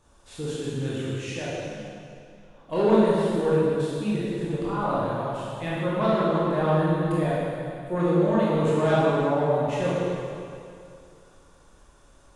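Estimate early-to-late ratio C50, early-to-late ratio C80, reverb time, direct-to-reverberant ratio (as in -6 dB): -3.5 dB, -1.5 dB, 2.5 s, -8.5 dB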